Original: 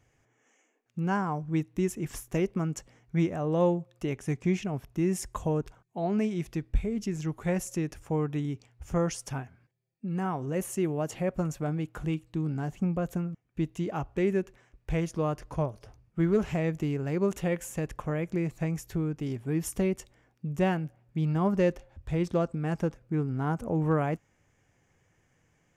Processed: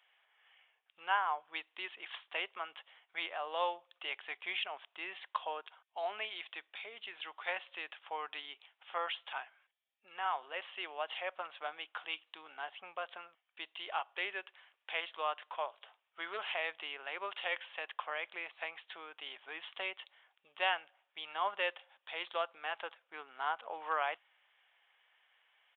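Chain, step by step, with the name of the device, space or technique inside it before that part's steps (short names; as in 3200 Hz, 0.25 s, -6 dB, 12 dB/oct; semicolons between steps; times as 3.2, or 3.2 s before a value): musical greeting card (downsampling 8000 Hz; HPF 780 Hz 24 dB/oct; bell 3200 Hz +11 dB 0.53 oct); gain +1 dB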